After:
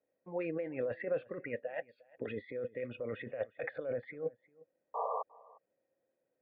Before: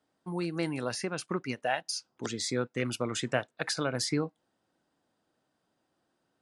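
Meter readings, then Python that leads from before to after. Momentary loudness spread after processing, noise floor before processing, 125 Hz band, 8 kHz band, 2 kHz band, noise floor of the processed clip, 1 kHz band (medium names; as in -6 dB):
6 LU, -79 dBFS, -13.5 dB, under -40 dB, -9.0 dB, -84 dBFS, -4.5 dB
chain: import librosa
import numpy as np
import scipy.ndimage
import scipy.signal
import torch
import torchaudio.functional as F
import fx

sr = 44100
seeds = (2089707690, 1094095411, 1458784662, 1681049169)

p1 = fx.notch(x, sr, hz=1800.0, q=9.9)
p2 = fx.noise_reduce_blind(p1, sr, reduce_db=12)
p3 = fx.over_compress(p2, sr, threshold_db=-39.0, ratio=-1.0)
p4 = fx.formant_cascade(p3, sr, vowel='e')
p5 = fx.spec_paint(p4, sr, seeds[0], shape='noise', start_s=4.94, length_s=0.29, low_hz=430.0, high_hz=1200.0, level_db=-48.0)
p6 = p5 + fx.echo_single(p5, sr, ms=355, db=-23.0, dry=0)
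y = F.gain(torch.from_numpy(p6), 12.5).numpy()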